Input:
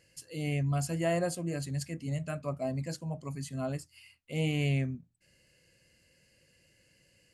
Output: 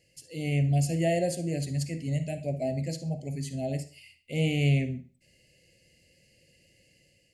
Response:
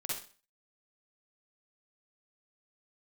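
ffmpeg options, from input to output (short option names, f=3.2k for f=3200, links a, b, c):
-filter_complex "[0:a]asuperstop=centerf=1200:order=8:qfactor=1.1,asplit=2[a][b];[b]highshelf=f=5.8k:g=-10.5[c];[1:a]atrim=start_sample=2205,lowpass=8.8k,highshelf=f=5.3k:g=8.5[d];[c][d]afir=irnorm=-1:irlink=0,volume=-9.5dB[e];[a][e]amix=inputs=2:normalize=0,dynaudnorm=f=160:g=5:m=4dB,volume=-2dB"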